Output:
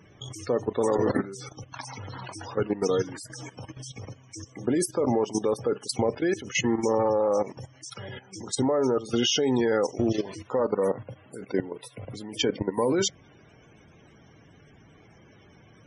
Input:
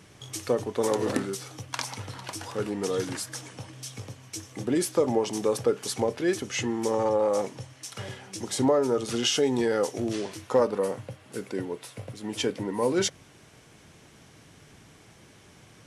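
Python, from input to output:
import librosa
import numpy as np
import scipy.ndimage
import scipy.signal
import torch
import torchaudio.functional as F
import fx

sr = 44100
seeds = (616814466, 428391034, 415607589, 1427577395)

y = fx.level_steps(x, sr, step_db=15)
y = fx.spec_topn(y, sr, count=64)
y = y * librosa.db_to_amplitude(7.0)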